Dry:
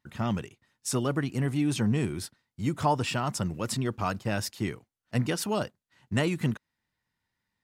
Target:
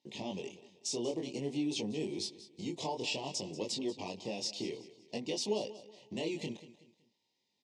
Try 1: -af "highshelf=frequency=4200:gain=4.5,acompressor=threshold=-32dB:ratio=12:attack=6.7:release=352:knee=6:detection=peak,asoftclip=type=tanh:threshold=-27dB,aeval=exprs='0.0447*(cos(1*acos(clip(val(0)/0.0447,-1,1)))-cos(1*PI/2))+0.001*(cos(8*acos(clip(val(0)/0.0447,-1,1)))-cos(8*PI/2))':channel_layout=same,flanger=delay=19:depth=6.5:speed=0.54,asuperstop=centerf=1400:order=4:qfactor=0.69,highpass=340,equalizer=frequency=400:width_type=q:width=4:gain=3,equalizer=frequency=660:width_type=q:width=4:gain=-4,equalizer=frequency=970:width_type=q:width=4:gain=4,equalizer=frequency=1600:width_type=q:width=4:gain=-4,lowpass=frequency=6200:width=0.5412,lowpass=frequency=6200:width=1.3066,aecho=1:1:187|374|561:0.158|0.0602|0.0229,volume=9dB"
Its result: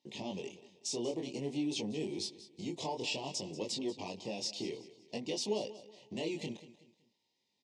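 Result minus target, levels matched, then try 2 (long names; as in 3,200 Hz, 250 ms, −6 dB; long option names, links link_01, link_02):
soft clipping: distortion +17 dB
-af "highshelf=frequency=4200:gain=4.5,acompressor=threshold=-32dB:ratio=12:attack=6.7:release=352:knee=6:detection=peak,asoftclip=type=tanh:threshold=-17dB,aeval=exprs='0.0447*(cos(1*acos(clip(val(0)/0.0447,-1,1)))-cos(1*PI/2))+0.001*(cos(8*acos(clip(val(0)/0.0447,-1,1)))-cos(8*PI/2))':channel_layout=same,flanger=delay=19:depth=6.5:speed=0.54,asuperstop=centerf=1400:order=4:qfactor=0.69,highpass=340,equalizer=frequency=400:width_type=q:width=4:gain=3,equalizer=frequency=660:width_type=q:width=4:gain=-4,equalizer=frequency=970:width_type=q:width=4:gain=4,equalizer=frequency=1600:width_type=q:width=4:gain=-4,lowpass=frequency=6200:width=0.5412,lowpass=frequency=6200:width=1.3066,aecho=1:1:187|374|561:0.158|0.0602|0.0229,volume=9dB"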